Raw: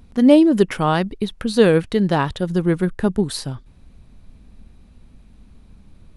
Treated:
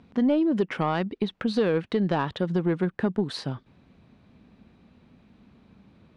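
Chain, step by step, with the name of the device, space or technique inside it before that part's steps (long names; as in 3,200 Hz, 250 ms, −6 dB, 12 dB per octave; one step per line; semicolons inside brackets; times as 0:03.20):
AM radio (band-pass filter 150–3,500 Hz; downward compressor 4 to 1, threshold −20 dBFS, peak gain reduction 11.5 dB; soft clipping −13.5 dBFS, distortion −22 dB)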